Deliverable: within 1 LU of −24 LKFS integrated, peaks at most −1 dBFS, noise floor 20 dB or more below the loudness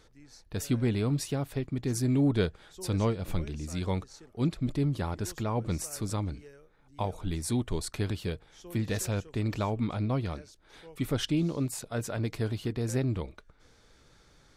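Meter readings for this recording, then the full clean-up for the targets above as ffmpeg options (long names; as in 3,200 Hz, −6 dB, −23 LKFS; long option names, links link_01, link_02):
integrated loudness −31.5 LKFS; sample peak −16.0 dBFS; target loudness −24.0 LKFS
→ -af "volume=7.5dB"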